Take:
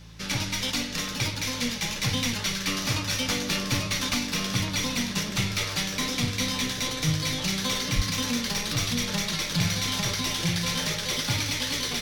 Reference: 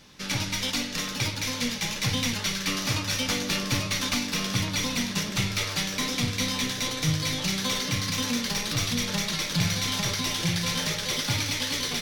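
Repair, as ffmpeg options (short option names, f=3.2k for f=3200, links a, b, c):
-filter_complex "[0:a]bandreject=f=55.1:t=h:w=4,bandreject=f=110.2:t=h:w=4,bandreject=f=165.3:t=h:w=4,asplit=3[a][b][c];[a]afade=t=out:st=7.95:d=0.02[d];[b]highpass=f=140:w=0.5412,highpass=f=140:w=1.3066,afade=t=in:st=7.95:d=0.02,afade=t=out:st=8.07:d=0.02[e];[c]afade=t=in:st=8.07:d=0.02[f];[d][e][f]amix=inputs=3:normalize=0"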